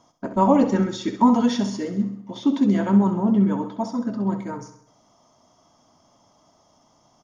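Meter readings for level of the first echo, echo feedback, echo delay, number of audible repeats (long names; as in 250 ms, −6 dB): −10.5 dB, 52%, 66 ms, 5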